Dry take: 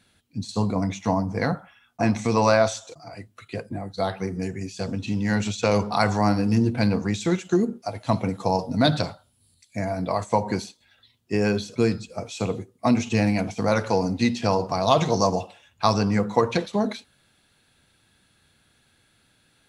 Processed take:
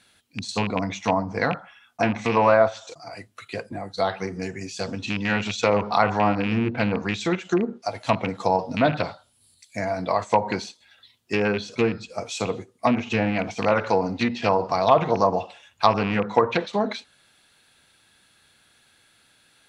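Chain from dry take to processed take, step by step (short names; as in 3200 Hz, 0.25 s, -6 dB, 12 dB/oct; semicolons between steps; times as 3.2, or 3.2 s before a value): rattling part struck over -22 dBFS, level -19 dBFS; treble ducked by the level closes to 1500 Hz, closed at -16 dBFS; low shelf 360 Hz -11 dB; Doppler distortion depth 0.1 ms; gain +5 dB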